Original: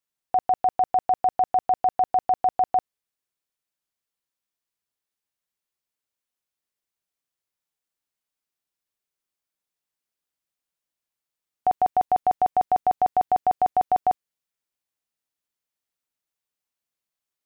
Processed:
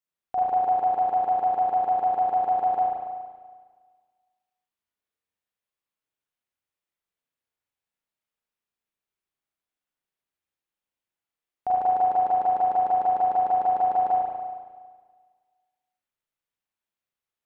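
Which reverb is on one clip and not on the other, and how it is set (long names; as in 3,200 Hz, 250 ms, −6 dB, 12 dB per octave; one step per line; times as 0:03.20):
spring reverb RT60 1.6 s, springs 35/46 ms, chirp 50 ms, DRR −6.5 dB
level −7.5 dB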